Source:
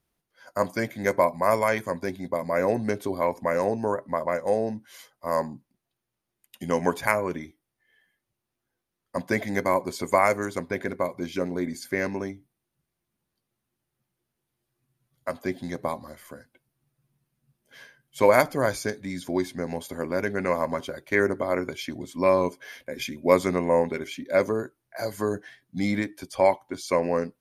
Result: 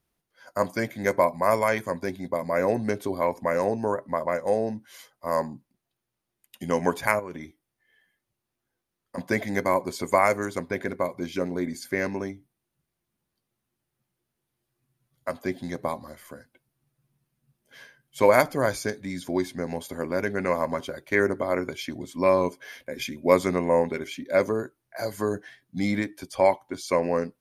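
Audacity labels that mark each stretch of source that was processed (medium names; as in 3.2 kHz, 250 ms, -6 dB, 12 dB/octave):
7.190000	9.180000	compression 5:1, threshold -32 dBFS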